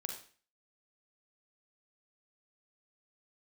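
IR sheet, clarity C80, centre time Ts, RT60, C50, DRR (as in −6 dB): 10.0 dB, 24 ms, 0.40 s, 5.5 dB, 2.5 dB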